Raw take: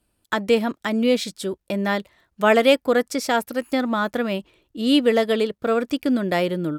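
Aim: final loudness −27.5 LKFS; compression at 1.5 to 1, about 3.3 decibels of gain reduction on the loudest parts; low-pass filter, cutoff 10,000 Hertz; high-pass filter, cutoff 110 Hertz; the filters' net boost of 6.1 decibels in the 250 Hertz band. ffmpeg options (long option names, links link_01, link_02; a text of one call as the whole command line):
ffmpeg -i in.wav -af "highpass=110,lowpass=10000,equalizer=frequency=250:width_type=o:gain=7,acompressor=threshold=-18dB:ratio=1.5,volume=-7dB" out.wav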